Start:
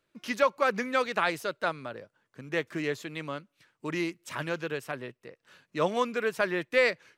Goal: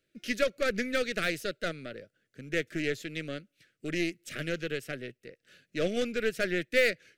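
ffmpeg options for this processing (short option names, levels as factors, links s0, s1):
-af "aeval=exprs='0.251*(cos(1*acos(clip(val(0)/0.251,-1,1)))-cos(1*PI/2))+0.0178*(cos(8*acos(clip(val(0)/0.251,-1,1)))-cos(8*PI/2))':c=same,asuperstop=centerf=950:order=4:qfactor=0.98"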